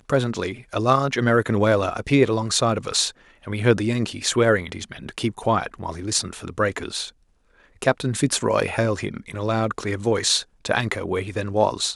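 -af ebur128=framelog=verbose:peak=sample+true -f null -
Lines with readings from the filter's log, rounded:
Integrated loudness:
  I:         -22.4 LUFS
  Threshold: -32.8 LUFS
Loudness range:
  LRA:         4.4 LU
  Threshold: -43.0 LUFS
  LRA low:   -25.3 LUFS
  LRA high:  -20.9 LUFS
Sample peak:
  Peak:       -2.0 dBFS
True peak:
  Peak:       -2.0 dBFS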